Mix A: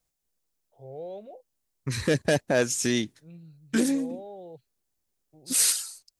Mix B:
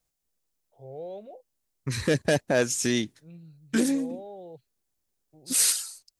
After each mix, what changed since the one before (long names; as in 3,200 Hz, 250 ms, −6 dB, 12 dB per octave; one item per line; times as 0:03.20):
nothing changed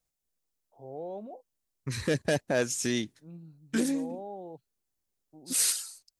first voice: add octave-band graphic EQ 125/250/500/1,000/2,000/4,000 Hz −7/+10/−5/+10/−11/−7 dB
second voice −4.0 dB